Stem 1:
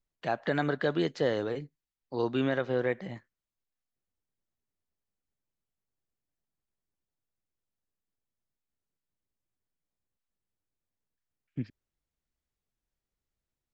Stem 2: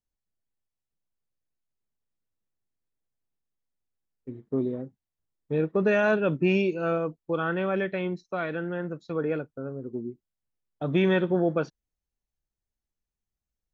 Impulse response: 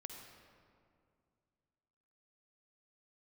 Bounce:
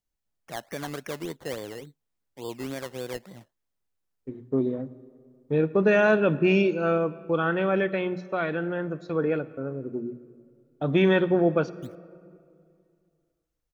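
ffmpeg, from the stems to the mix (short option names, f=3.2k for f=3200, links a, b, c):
-filter_complex "[0:a]acrusher=samples=15:mix=1:aa=0.000001:lfo=1:lforange=9:lforate=3.5,adelay=250,volume=-6dB[a];[1:a]bandreject=f=60:t=h:w=6,bandreject=f=120:t=h:w=6,bandreject=f=180:t=h:w=6,bandreject=f=240:t=h:w=6,volume=1dB,asplit=2[b][c];[c]volume=-7dB[d];[2:a]atrim=start_sample=2205[e];[d][e]afir=irnorm=-1:irlink=0[f];[a][b][f]amix=inputs=3:normalize=0"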